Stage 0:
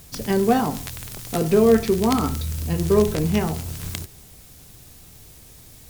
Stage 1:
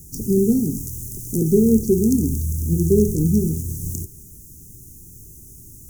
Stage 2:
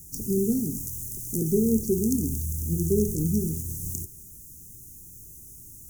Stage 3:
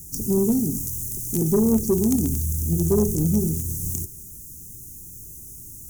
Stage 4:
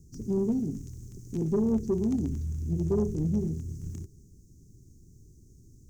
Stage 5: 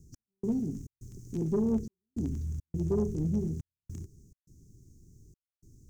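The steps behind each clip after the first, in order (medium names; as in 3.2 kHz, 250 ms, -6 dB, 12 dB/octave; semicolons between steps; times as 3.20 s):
Chebyshev band-stop 380–6200 Hz, order 4; trim +4.5 dB
treble shelf 3.9 kHz +6.5 dB; trim -7.5 dB
saturation -17 dBFS, distortion -18 dB; trim +5.5 dB
distance through air 190 m; trim -6.5 dB
trance gate "x..xxx.xxxxx" 104 bpm -60 dB; trim -2 dB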